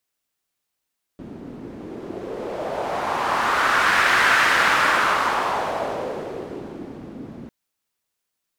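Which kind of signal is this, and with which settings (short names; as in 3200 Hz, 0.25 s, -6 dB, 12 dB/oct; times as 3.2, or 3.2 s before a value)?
wind-like swept noise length 6.30 s, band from 250 Hz, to 1600 Hz, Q 2.3, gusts 1, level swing 20 dB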